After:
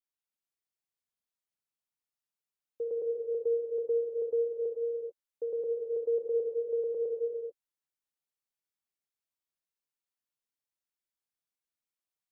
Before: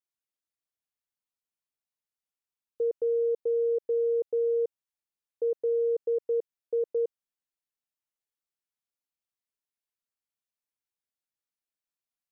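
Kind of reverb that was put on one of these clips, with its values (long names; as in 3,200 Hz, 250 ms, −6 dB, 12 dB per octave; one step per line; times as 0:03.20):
reverb whose tail is shaped and stops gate 470 ms flat, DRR −1 dB
level −6 dB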